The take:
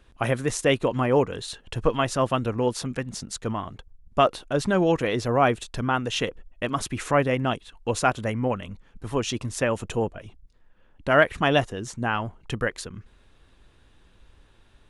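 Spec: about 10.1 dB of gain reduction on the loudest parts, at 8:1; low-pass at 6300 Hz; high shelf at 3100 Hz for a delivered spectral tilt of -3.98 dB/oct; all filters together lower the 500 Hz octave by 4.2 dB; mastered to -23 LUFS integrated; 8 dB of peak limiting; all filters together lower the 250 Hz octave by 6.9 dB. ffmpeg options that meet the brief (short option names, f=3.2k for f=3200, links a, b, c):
-af "lowpass=6.3k,equalizer=f=250:t=o:g=-8,equalizer=f=500:t=o:g=-3.5,highshelf=f=3.1k:g=5.5,acompressor=threshold=-25dB:ratio=8,volume=11dB,alimiter=limit=-10.5dB:level=0:latency=1"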